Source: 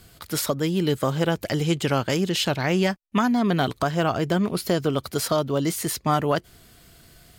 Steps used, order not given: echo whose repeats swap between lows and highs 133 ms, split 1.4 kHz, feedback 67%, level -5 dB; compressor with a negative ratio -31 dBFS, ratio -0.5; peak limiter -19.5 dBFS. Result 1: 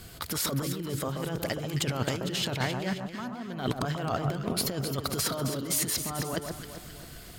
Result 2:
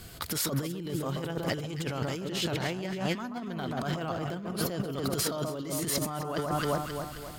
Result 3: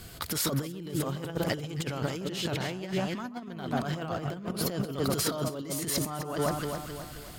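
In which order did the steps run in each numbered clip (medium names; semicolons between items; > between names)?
peak limiter > compressor with a negative ratio > echo whose repeats swap between lows and highs; echo whose repeats swap between lows and highs > peak limiter > compressor with a negative ratio; peak limiter > echo whose repeats swap between lows and highs > compressor with a negative ratio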